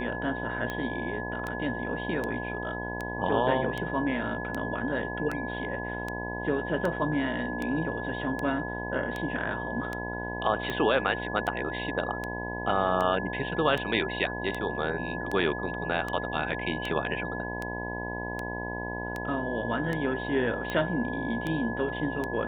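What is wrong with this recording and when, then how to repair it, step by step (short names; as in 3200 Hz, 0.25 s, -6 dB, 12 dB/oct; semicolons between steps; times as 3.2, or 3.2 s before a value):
buzz 60 Hz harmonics 17 -36 dBFS
tick 78 rpm -19 dBFS
tone 1700 Hz -36 dBFS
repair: de-click; notch 1700 Hz, Q 30; de-hum 60 Hz, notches 17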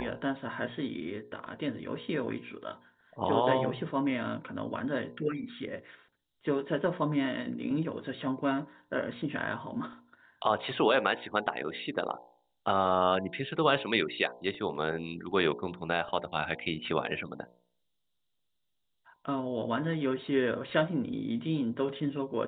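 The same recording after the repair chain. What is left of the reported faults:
none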